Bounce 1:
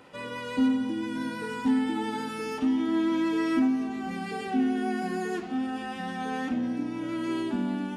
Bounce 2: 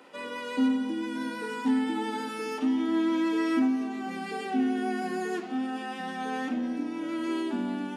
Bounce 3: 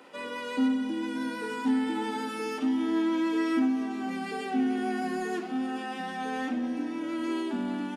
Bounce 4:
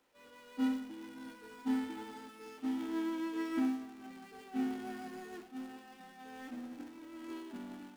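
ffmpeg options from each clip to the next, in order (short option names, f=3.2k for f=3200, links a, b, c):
-af "highpass=f=220:w=0.5412,highpass=f=220:w=1.3066"
-filter_complex "[0:a]asplit=2[a][b];[b]asoftclip=type=tanh:threshold=-34dB,volume=-10dB[c];[a][c]amix=inputs=2:normalize=0,aecho=1:1:440:0.188,volume=-1.5dB"
-af "aeval=exprs='val(0)+0.5*0.0237*sgn(val(0))':c=same,agate=range=-33dB:threshold=-19dB:ratio=3:detection=peak,volume=-4.5dB"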